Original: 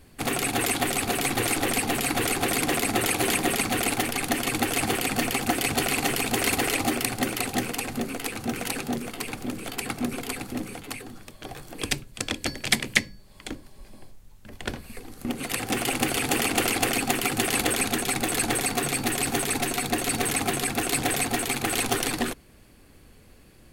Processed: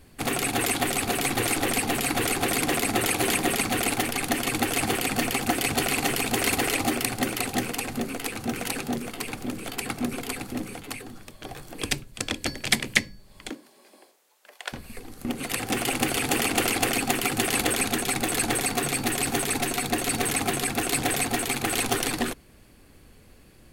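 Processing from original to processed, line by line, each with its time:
0:13.49–0:14.72: high-pass filter 200 Hz → 650 Hz 24 dB per octave

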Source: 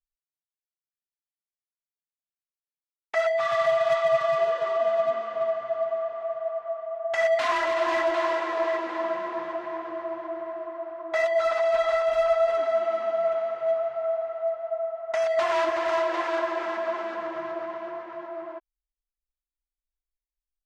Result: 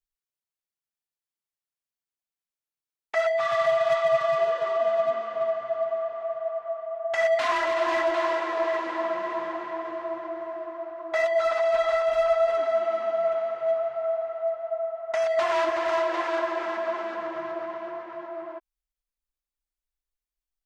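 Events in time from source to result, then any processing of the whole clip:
0:08.17–0:09.17: delay throw 560 ms, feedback 45%, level −10.5 dB

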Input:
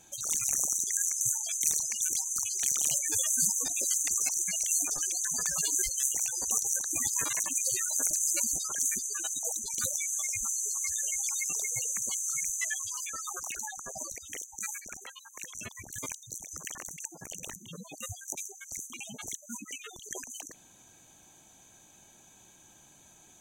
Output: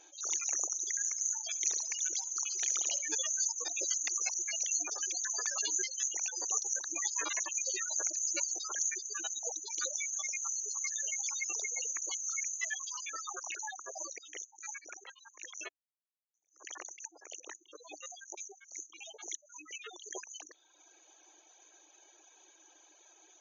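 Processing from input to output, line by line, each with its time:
0:00.67–0:03.15: repeating echo 70 ms, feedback 59%, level −10 dB
0:15.69–0:16.34: silence
whole clip: brick-wall band-pass 300–7,000 Hz; reverb reduction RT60 0.98 s; level that may rise only so fast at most 180 dB per second

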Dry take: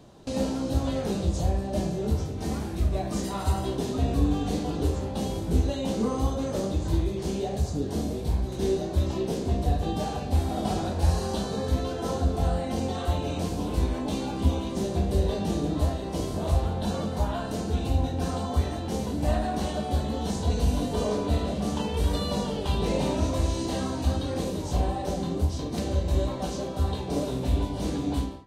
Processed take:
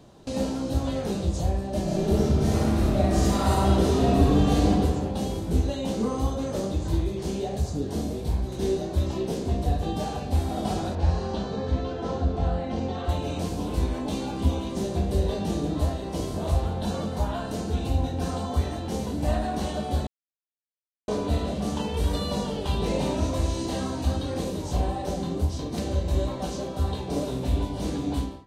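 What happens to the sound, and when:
0:01.83–0:04.70: thrown reverb, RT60 1.8 s, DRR −6.5 dB
0:10.95–0:13.09: high-frequency loss of the air 140 metres
0:20.07–0:21.08: silence

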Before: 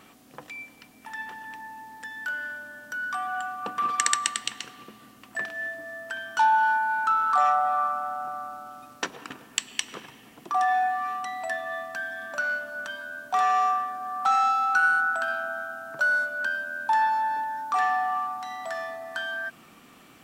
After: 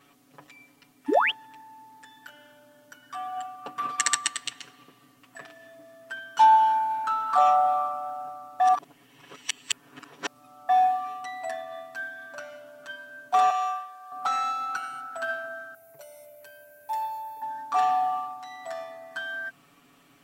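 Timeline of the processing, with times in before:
0:01.08–0:01.31: sound drawn into the spectrogram rise 250–3,500 Hz −23 dBFS
0:08.60–0:10.69: reverse
0:13.50–0:14.12: Bessel high-pass filter 960 Hz
0:15.74–0:17.42: drawn EQ curve 100 Hz 0 dB, 260 Hz −14 dB, 410 Hz −2 dB, 760 Hz −3 dB, 1,500 Hz −22 dB, 2,100 Hz 0 dB, 3,200 Hz −10 dB, 7,500 Hz −1 dB, 13,000 Hz +13 dB
whole clip: dynamic equaliser 670 Hz, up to +5 dB, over −38 dBFS, Q 2.7; comb filter 7.1 ms, depth 99%; expander for the loud parts 1.5 to 1, over −32 dBFS

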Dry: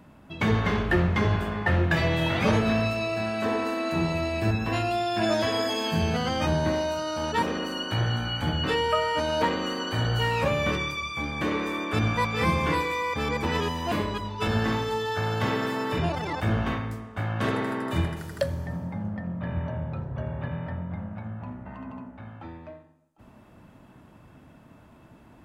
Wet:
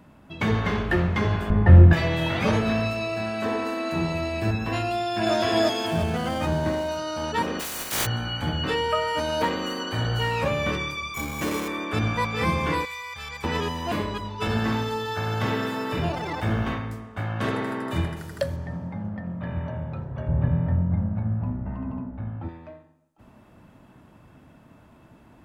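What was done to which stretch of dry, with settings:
0:01.50–0:01.93: spectral tilt −4 dB per octave
0:04.92–0:05.35: delay throw 340 ms, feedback 45%, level 0 dB
0:05.86–0:06.89: running median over 9 samples
0:07.59–0:08.05: compressing power law on the bin magnitudes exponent 0.13
0:09.07–0:09.83: high-shelf EQ 11,000 Hz +10.5 dB
0:11.14–0:11.68: sample-rate reduction 4,600 Hz
0:12.85–0:13.44: guitar amp tone stack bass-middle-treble 10-0-10
0:14.39–0:16.66: feedback echo at a low word length 81 ms, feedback 35%, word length 9 bits, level −10 dB
0:18.56–0:19.27: high-frequency loss of the air 59 metres
0:20.28–0:22.49: spectral tilt −3.5 dB per octave

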